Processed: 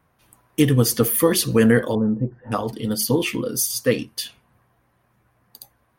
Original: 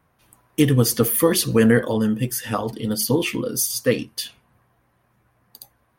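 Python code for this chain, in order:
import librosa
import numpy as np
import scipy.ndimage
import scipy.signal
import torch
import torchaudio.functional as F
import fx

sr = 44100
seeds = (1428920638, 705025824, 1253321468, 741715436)

y = fx.lowpass(x, sr, hz=1000.0, slope=24, at=(1.95, 2.52))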